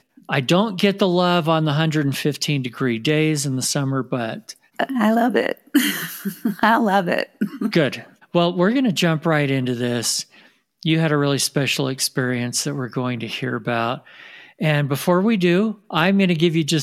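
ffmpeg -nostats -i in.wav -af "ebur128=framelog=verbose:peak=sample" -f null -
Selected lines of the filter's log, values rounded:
Integrated loudness:
  I:         -20.0 LUFS
  Threshold: -30.2 LUFS
Loudness range:
  LRA:         2.5 LU
  Threshold: -40.6 LUFS
  LRA low:   -21.9 LUFS
  LRA high:  -19.4 LUFS
Sample peak:
  Peak:       -2.3 dBFS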